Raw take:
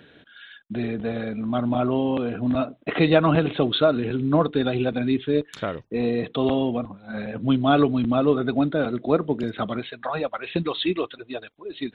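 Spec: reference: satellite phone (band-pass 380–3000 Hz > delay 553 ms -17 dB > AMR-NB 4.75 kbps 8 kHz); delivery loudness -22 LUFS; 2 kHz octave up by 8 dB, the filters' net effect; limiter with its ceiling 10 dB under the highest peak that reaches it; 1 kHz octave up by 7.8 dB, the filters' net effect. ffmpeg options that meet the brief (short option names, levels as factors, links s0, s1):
-af "equalizer=f=1000:t=o:g=8.5,equalizer=f=2000:t=o:g=8.5,alimiter=limit=0.299:level=0:latency=1,highpass=380,lowpass=3000,aecho=1:1:553:0.141,volume=1.88" -ar 8000 -c:a libopencore_amrnb -b:a 4750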